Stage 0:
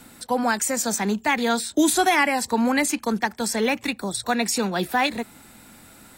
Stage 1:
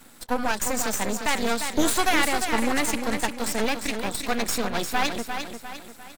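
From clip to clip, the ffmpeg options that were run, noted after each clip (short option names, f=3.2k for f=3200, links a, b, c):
-af "lowshelf=f=140:g=-7.5,aecho=1:1:350|700|1050|1400|1750:0.447|0.197|0.0865|0.0381|0.0167,aeval=exprs='max(val(0),0)':c=same,volume=1.5dB"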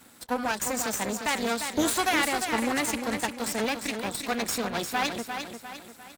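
-af "highpass=57,volume=-2.5dB"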